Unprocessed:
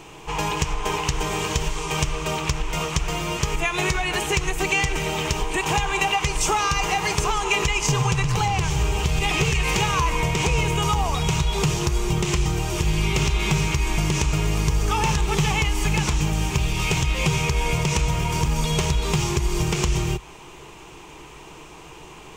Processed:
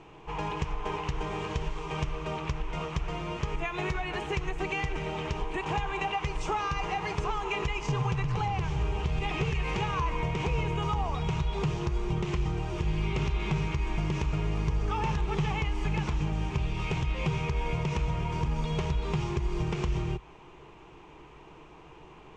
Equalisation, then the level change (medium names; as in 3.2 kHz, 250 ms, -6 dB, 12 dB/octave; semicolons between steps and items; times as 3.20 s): Bessel low-pass 4.1 kHz, order 2; treble shelf 3 kHz -9.5 dB; -7.0 dB